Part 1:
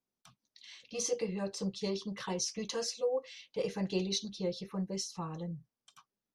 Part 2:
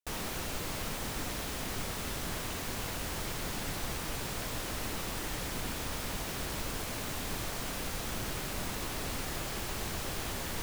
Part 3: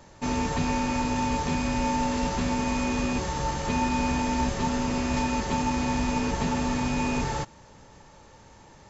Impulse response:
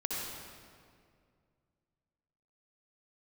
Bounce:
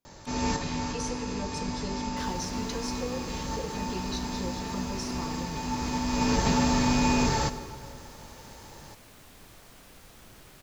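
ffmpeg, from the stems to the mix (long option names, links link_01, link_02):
-filter_complex "[0:a]acompressor=threshold=-39dB:ratio=6,volume=2.5dB,asplit=3[link_01][link_02][link_03];[link_02]volume=-11.5dB[link_04];[1:a]adelay=2100,volume=-15dB[link_05];[2:a]aexciter=amount=1.6:drive=6.5:freq=4100,adelay=50,volume=1dB,asplit=2[link_06][link_07];[link_07]volume=-14dB[link_08];[link_03]apad=whole_len=394577[link_09];[link_06][link_09]sidechaincompress=threshold=-59dB:ratio=8:attack=5.3:release=418[link_10];[3:a]atrim=start_sample=2205[link_11];[link_04][link_08]amix=inputs=2:normalize=0[link_12];[link_12][link_11]afir=irnorm=-1:irlink=0[link_13];[link_01][link_05][link_10][link_13]amix=inputs=4:normalize=0"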